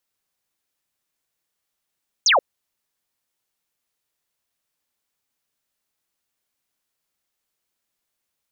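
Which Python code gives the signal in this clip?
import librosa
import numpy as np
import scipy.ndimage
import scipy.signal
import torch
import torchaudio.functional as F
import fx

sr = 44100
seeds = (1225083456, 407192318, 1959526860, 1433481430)

y = fx.laser_zap(sr, level_db=-12.5, start_hz=7000.0, end_hz=470.0, length_s=0.13, wave='sine')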